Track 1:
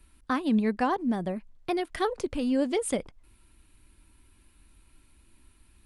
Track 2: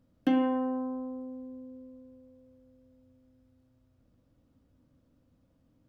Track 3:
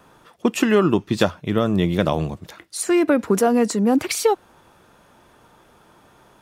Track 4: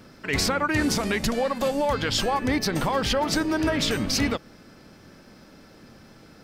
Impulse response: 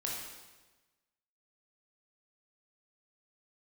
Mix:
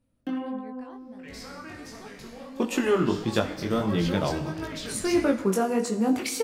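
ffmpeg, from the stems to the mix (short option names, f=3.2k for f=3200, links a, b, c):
-filter_complex "[0:a]volume=-18dB,asplit=2[a][b];[1:a]volume=-3.5dB,asplit=2[c][d];[d]volume=-18.5dB[e];[2:a]adelay=2150,volume=-6dB,asplit=2[f][g];[g]volume=-8dB[h];[3:a]adelay=950,volume=-11dB,asplit=2[i][j];[j]volume=-8.5dB[k];[b]apad=whole_len=325749[l];[i][l]sidechaincompress=threshold=-60dB:ratio=8:attack=16:release=659[m];[4:a]atrim=start_sample=2205[n];[e][h][k]amix=inputs=3:normalize=0[o];[o][n]afir=irnorm=-1:irlink=0[p];[a][c][f][m][p]amix=inputs=5:normalize=0,flanger=delay=18:depth=4.5:speed=1.5"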